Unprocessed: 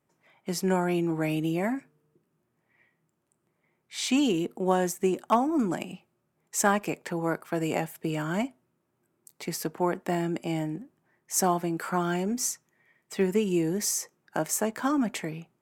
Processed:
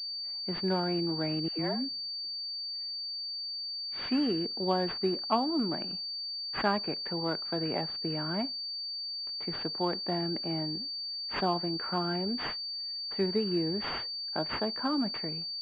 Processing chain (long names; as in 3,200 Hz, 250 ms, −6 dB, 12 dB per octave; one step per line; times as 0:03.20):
noise gate with hold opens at −59 dBFS
0:01.48–0:04.08: all-pass dispersion lows, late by 111 ms, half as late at 630 Hz
switching amplifier with a slow clock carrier 4,600 Hz
level −4.5 dB